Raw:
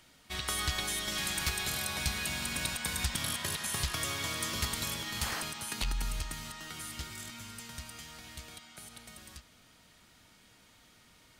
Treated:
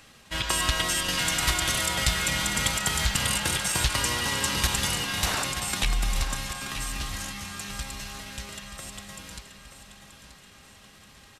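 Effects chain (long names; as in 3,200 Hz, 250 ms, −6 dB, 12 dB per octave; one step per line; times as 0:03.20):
on a send at −17.5 dB: convolution reverb, pre-delay 3 ms
on the sum: pitch shifter −2.5 semitones
repeating echo 930 ms, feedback 42%, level −11 dB
level +8 dB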